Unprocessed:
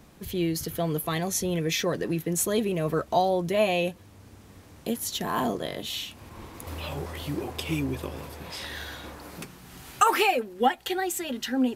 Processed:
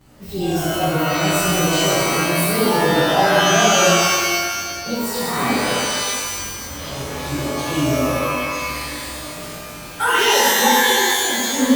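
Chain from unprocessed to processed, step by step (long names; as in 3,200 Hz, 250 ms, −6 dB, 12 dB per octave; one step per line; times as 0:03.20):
partials spread apart or drawn together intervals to 108%
reverb with rising layers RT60 1.7 s, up +12 semitones, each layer −2 dB, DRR −7 dB
level +2 dB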